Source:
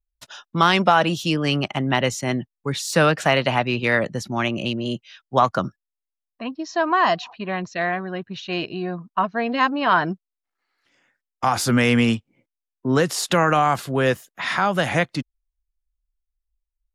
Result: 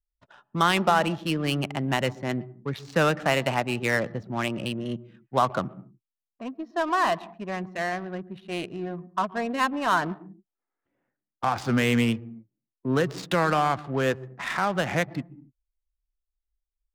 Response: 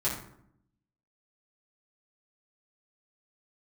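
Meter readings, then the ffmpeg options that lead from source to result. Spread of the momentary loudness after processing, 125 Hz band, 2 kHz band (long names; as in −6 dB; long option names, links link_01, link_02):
12 LU, −4.5 dB, −5.5 dB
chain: -filter_complex "[0:a]asplit=2[link_01][link_02];[link_02]highpass=frequency=140:width=0.5412,highpass=frequency=140:width=1.3066,equalizer=frequency=540:width_type=q:width=4:gain=-8,equalizer=frequency=1000:width_type=q:width=4:gain=-6,equalizer=frequency=1500:width_type=q:width=4:gain=-10,equalizer=frequency=2200:width_type=q:width=4:gain=-4,lowpass=frequency=2400:width=0.5412,lowpass=frequency=2400:width=1.3066[link_03];[1:a]atrim=start_sample=2205,afade=type=out:start_time=0.23:duration=0.01,atrim=end_sample=10584,adelay=114[link_04];[link_03][link_04]afir=irnorm=-1:irlink=0,volume=-22.5dB[link_05];[link_01][link_05]amix=inputs=2:normalize=0,adynamicsmooth=sensitivity=2.5:basefreq=880,volume=-5dB"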